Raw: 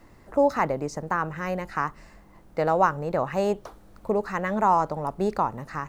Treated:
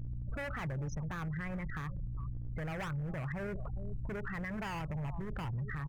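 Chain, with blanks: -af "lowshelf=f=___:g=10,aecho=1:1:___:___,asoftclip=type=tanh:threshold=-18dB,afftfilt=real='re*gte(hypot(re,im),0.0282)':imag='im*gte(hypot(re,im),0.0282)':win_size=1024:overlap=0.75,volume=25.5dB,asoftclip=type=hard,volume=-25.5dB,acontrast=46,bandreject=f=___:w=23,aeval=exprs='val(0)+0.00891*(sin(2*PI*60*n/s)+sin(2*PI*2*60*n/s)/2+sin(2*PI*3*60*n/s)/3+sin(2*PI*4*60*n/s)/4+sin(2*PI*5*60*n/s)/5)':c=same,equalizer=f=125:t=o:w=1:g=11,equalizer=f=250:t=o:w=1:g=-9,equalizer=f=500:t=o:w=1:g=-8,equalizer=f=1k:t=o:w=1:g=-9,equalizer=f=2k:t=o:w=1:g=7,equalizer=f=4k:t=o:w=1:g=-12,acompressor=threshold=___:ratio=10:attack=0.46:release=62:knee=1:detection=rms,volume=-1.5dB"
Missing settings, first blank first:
72, 403, 0.1, 2.8k, -32dB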